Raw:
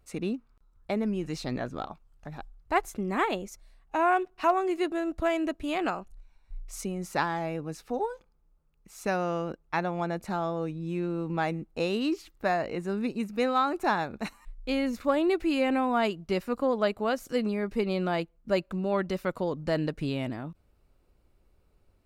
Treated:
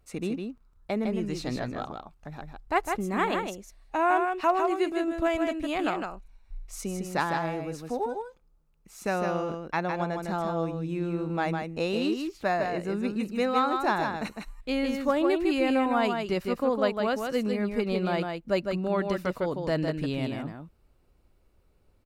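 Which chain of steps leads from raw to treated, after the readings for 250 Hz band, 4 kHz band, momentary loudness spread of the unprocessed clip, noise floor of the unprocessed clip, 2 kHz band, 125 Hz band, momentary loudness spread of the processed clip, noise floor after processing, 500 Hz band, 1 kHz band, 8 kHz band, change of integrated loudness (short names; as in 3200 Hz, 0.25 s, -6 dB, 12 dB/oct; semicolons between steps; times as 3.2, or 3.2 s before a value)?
+1.0 dB, +1.0 dB, 11 LU, -66 dBFS, +1.0 dB, +1.5 dB, 12 LU, -64 dBFS, +1.5 dB, +1.0 dB, +1.0 dB, +1.0 dB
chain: echo 0.156 s -5 dB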